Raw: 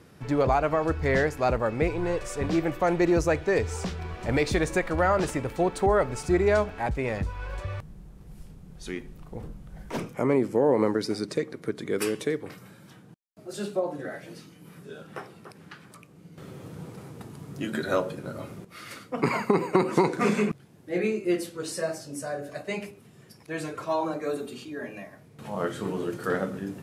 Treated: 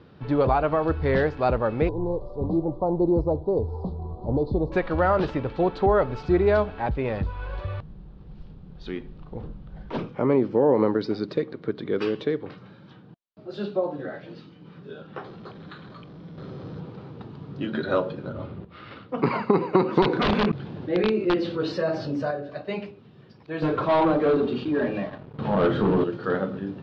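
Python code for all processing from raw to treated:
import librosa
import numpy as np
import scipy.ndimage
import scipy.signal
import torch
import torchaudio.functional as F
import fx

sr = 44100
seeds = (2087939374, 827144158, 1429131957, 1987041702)

y = fx.chain(x, sr, fx.cheby1_bandstop(low_hz=950.0, high_hz=4400.0, order=3),
    fx.air_absorb(metres=430.0), at=(1.89, 4.72))
y = fx.chain(y, sr, fx.zero_step(step_db=-44.0),
    fx.notch(hz=870.0, q=14.0),
    fx.resample_bad(factor=8, down='filtered', up='hold'), at=(15.24, 16.8))
y = fx.chain(y, sr, fx.peak_eq(hz=75.0, db=9.0, octaves=0.87),
    fx.resample_linear(factor=6), at=(18.29, 19.09))
y = fx.chain(y, sr, fx.overflow_wrap(gain_db=17.0),
    fx.high_shelf(hz=8700.0, db=-11.0),
    fx.env_flatten(amount_pct=50), at=(20.02, 22.31))
y = fx.chain(y, sr, fx.peak_eq(hz=4900.0, db=-8.0, octaves=2.3),
    fx.leveller(passes=3), at=(23.62, 26.04))
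y = scipy.signal.sosfilt(scipy.signal.butter(6, 4200.0, 'lowpass', fs=sr, output='sos'), y)
y = fx.peak_eq(y, sr, hz=2100.0, db=-7.0, octaves=0.65)
y = fx.notch(y, sr, hz=680.0, q=19.0)
y = F.gain(torch.from_numpy(y), 2.5).numpy()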